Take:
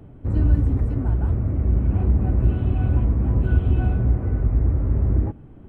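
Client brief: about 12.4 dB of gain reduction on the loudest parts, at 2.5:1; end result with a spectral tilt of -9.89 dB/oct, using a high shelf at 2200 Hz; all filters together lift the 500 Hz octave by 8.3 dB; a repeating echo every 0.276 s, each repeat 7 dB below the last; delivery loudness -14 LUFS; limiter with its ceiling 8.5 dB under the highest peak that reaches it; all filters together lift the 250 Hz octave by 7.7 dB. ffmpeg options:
-af "equalizer=f=250:t=o:g=7.5,equalizer=f=500:t=o:g=8.5,highshelf=f=2.2k:g=-7.5,acompressor=threshold=-31dB:ratio=2.5,alimiter=level_in=1.5dB:limit=-24dB:level=0:latency=1,volume=-1.5dB,aecho=1:1:276|552|828|1104|1380:0.447|0.201|0.0905|0.0407|0.0183,volume=19.5dB"

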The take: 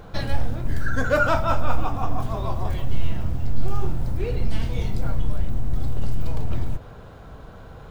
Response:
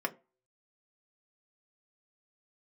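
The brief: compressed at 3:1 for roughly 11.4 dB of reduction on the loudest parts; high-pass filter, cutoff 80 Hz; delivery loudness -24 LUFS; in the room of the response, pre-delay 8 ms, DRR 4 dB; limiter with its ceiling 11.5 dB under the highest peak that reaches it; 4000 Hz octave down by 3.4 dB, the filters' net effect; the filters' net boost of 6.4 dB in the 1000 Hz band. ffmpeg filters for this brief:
-filter_complex "[0:a]highpass=80,equalizer=f=1k:t=o:g=9,equalizer=f=4k:t=o:g=-5,acompressor=threshold=-28dB:ratio=3,alimiter=level_in=3.5dB:limit=-24dB:level=0:latency=1,volume=-3.5dB,asplit=2[a][b];[1:a]atrim=start_sample=2205,adelay=8[c];[b][c]afir=irnorm=-1:irlink=0,volume=-9.5dB[d];[a][d]amix=inputs=2:normalize=0,volume=12dB"

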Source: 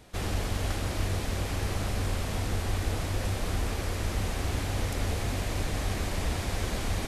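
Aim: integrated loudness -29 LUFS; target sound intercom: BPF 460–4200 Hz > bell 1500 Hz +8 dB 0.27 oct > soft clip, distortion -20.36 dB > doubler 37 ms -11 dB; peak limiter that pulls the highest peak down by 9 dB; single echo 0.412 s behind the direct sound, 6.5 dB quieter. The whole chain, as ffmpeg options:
-filter_complex "[0:a]alimiter=level_in=1dB:limit=-24dB:level=0:latency=1,volume=-1dB,highpass=460,lowpass=4.2k,equalizer=f=1.5k:t=o:w=0.27:g=8,aecho=1:1:412:0.473,asoftclip=threshold=-32dB,asplit=2[a][b];[b]adelay=37,volume=-11dB[c];[a][c]amix=inputs=2:normalize=0,volume=11dB"

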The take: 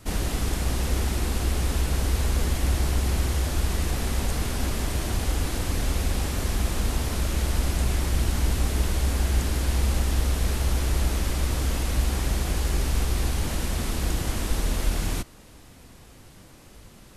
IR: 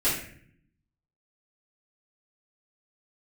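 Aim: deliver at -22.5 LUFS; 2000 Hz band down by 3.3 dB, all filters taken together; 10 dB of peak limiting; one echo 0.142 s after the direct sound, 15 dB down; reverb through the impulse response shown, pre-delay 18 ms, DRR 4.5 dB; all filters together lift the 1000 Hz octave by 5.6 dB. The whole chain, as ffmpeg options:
-filter_complex "[0:a]equalizer=f=1k:t=o:g=9,equalizer=f=2k:t=o:g=-7.5,alimiter=limit=-20.5dB:level=0:latency=1,aecho=1:1:142:0.178,asplit=2[a][b];[1:a]atrim=start_sample=2205,adelay=18[c];[b][c]afir=irnorm=-1:irlink=0,volume=-16.5dB[d];[a][d]amix=inputs=2:normalize=0,volume=5dB"

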